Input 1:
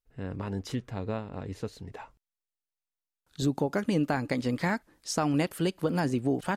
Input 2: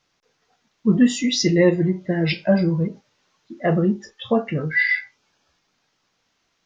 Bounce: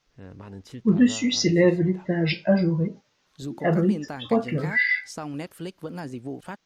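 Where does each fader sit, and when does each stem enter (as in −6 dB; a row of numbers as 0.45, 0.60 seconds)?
−7.0, −2.5 decibels; 0.00, 0.00 seconds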